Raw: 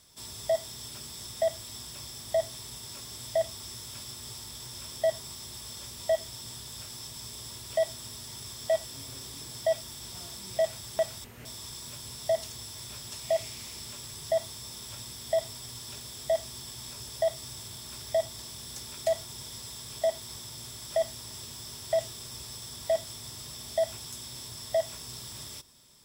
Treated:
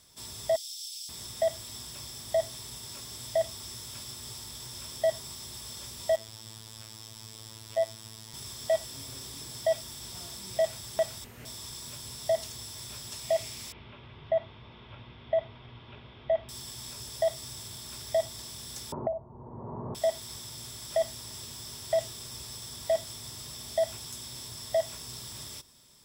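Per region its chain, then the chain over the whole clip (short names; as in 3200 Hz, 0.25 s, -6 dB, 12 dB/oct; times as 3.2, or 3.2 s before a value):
0.56–1.09 inverse Chebyshev high-pass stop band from 1500 Hz + bell 5400 Hz +4.5 dB 0.74 oct
6.16–8.34 high shelf 5300 Hz -4.5 dB + robotiser 110 Hz
13.72–16.49 steep low-pass 3000 Hz + notch 1800 Hz, Q 10
18.92–19.95 elliptic low-pass 1000 Hz, stop band 80 dB + doubler 45 ms -6 dB + three-band squash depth 100%
whole clip: dry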